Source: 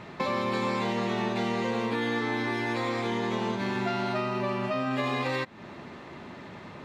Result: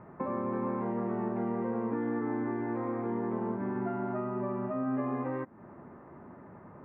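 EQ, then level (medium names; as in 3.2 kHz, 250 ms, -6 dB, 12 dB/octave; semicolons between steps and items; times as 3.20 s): low-pass 1.5 kHz 24 dB/octave; dynamic bell 290 Hz, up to +7 dB, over -45 dBFS, Q 1.8; distance through air 240 m; -5.5 dB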